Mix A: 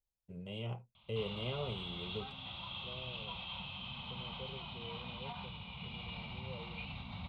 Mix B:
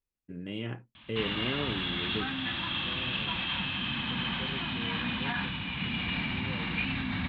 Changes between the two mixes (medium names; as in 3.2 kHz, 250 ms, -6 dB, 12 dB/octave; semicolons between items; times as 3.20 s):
background +7.5 dB; master: remove static phaser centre 710 Hz, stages 4